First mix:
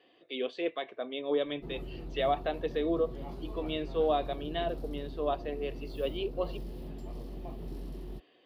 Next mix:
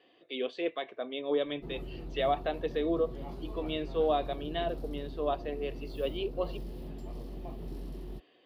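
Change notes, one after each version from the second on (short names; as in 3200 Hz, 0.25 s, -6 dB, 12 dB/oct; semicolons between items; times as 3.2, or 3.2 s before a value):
none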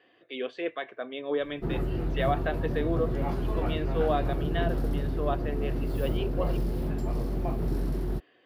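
background +11.0 dB; master: add fifteen-band EQ 100 Hz +9 dB, 1600 Hz +9 dB, 4000 Hz -4 dB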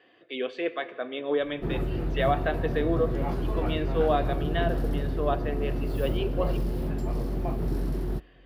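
reverb: on, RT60 2.7 s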